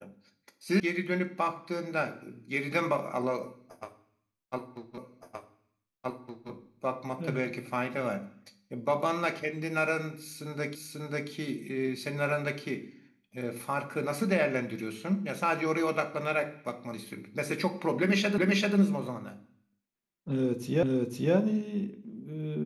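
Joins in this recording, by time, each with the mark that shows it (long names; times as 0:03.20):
0:00.80: cut off before it has died away
0:04.98: the same again, the last 1.52 s
0:10.75: the same again, the last 0.54 s
0:18.38: the same again, the last 0.39 s
0:20.83: the same again, the last 0.51 s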